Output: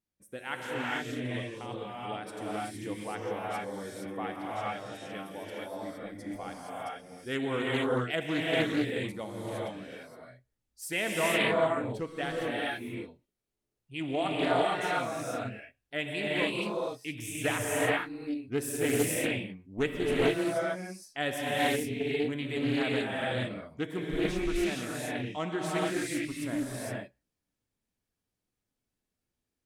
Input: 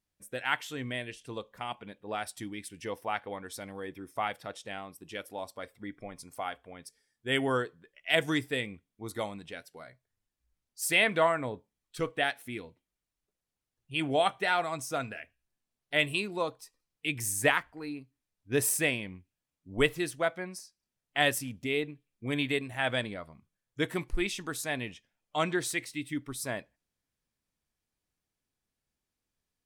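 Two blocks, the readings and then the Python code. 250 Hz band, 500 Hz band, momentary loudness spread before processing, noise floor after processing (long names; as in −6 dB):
+4.5 dB, +2.0 dB, 16 LU, below −85 dBFS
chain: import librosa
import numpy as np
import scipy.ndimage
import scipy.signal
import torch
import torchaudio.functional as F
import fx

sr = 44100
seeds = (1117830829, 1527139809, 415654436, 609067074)

y = fx.peak_eq(x, sr, hz=260.0, db=7.0, octaves=2.2)
y = fx.rev_gated(y, sr, seeds[0], gate_ms=490, shape='rising', drr_db=-5.5)
y = fx.doppler_dist(y, sr, depth_ms=0.26)
y = y * librosa.db_to_amplitude(-8.5)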